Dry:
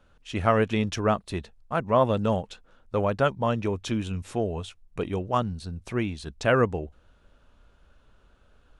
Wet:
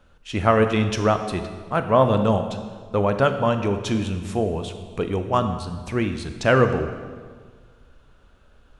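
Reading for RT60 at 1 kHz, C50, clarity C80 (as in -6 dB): 1.6 s, 9.0 dB, 10.0 dB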